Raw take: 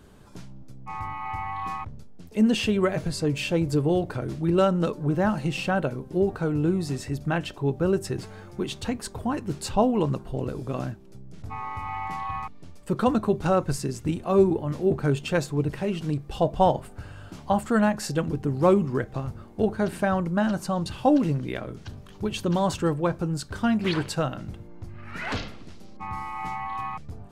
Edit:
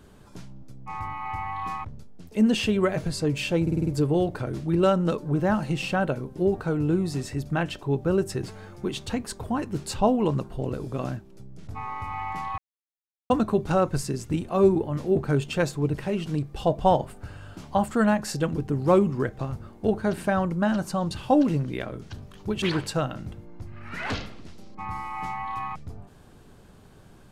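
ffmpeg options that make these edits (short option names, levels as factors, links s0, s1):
-filter_complex "[0:a]asplit=9[s0][s1][s2][s3][s4][s5][s6][s7][s8];[s0]atrim=end=3.672[s9];[s1]atrim=start=3.618:end=3.672[s10];[s2]atrim=start=3.618:end=3.672[s11];[s3]atrim=start=3.618:end=3.672[s12];[s4]atrim=start=3.618:end=3.672[s13];[s5]atrim=start=3.618:end=12.33,asetpts=PTS-STARTPTS,afade=t=out:st=8.708:d=0.004:c=hsin[s14];[s6]atrim=start=12.33:end=13.05,asetpts=PTS-STARTPTS,volume=0[s15];[s7]atrim=start=13.05:end=22.372,asetpts=PTS-STARTPTS,afade=t=in:d=0.004:c=hsin[s16];[s8]atrim=start=23.838[s17];[s9][s10]acrossfade=d=0.004:c1=hsin:c2=hsin[s18];[s18][s11]acrossfade=d=0.004:c1=hsin:c2=hsin[s19];[s19][s12]acrossfade=d=0.004:c1=hsin:c2=hsin[s20];[s20][s13]acrossfade=d=0.004:c1=hsin:c2=hsin[s21];[s14][s15][s16]concat=n=3:v=0:a=1[s22];[s21][s22]acrossfade=d=0.004:c1=hsin:c2=hsin[s23];[s23][s17]acrossfade=d=0.004:c1=hsin:c2=hsin"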